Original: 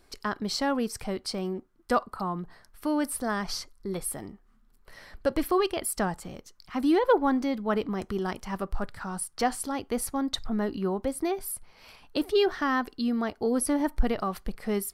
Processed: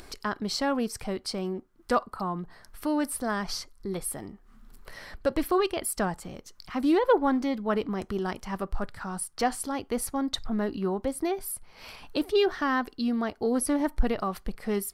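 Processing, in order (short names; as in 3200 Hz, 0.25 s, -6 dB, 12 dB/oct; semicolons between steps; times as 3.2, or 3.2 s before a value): upward compressor, threshold -36 dBFS; Doppler distortion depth 0.16 ms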